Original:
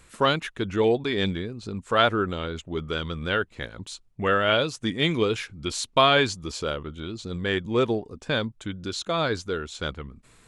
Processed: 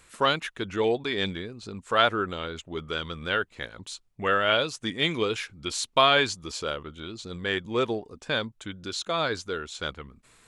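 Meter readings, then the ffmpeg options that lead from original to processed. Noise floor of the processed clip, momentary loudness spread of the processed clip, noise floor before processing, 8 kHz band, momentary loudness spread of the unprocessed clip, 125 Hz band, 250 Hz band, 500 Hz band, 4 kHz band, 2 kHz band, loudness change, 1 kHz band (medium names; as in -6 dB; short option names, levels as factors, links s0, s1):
-64 dBFS, 15 LU, -59 dBFS, 0.0 dB, 13 LU, -6.5 dB, -5.0 dB, -3.0 dB, 0.0 dB, -0.5 dB, -1.5 dB, -1.0 dB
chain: -af "lowshelf=f=390:g=-7.5"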